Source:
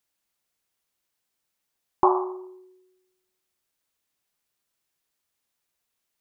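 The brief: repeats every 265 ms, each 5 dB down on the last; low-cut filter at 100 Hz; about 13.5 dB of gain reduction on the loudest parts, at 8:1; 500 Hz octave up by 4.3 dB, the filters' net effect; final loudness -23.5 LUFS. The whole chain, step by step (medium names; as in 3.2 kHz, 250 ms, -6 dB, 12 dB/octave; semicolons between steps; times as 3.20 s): high-pass 100 Hz; peaking EQ 500 Hz +7.5 dB; compression 8:1, threshold -25 dBFS; feedback delay 265 ms, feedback 56%, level -5 dB; trim +10 dB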